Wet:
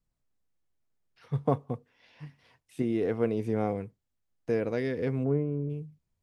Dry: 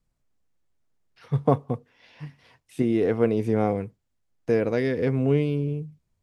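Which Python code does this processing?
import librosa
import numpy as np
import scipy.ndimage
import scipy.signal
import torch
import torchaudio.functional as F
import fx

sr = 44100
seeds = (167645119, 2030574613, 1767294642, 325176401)

y = fx.lowpass(x, sr, hz=1500.0, slope=24, at=(5.23, 5.69), fade=0.02)
y = F.gain(torch.from_numpy(y), -6.0).numpy()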